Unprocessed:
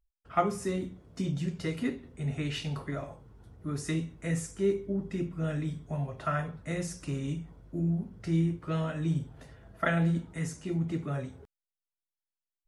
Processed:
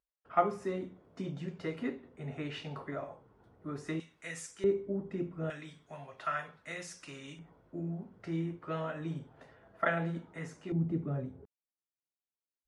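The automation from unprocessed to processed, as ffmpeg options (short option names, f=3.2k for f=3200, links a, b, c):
-af "asetnsamples=n=441:p=0,asendcmd='4 bandpass f 3100;4.64 bandpass f 600;5.5 bandpass f 2400;7.39 bandpass f 910;10.72 bandpass f 250',bandpass=f=780:t=q:w=0.55:csg=0"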